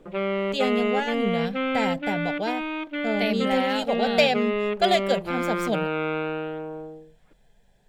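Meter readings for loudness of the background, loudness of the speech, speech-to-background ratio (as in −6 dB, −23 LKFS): −27.5 LKFS, −26.5 LKFS, 1.0 dB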